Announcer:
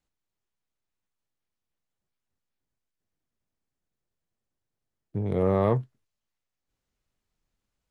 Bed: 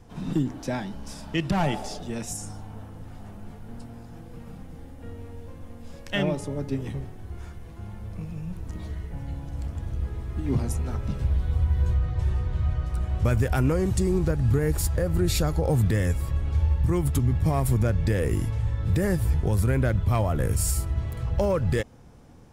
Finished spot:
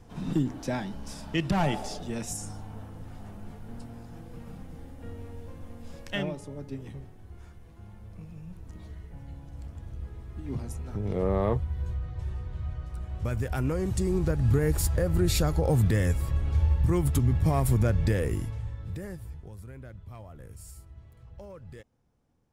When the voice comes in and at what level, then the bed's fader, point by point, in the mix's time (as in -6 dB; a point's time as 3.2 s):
5.80 s, -3.5 dB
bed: 6.04 s -1.5 dB
6.34 s -9 dB
13.08 s -9 dB
14.53 s -1 dB
18.08 s -1 dB
19.55 s -21.5 dB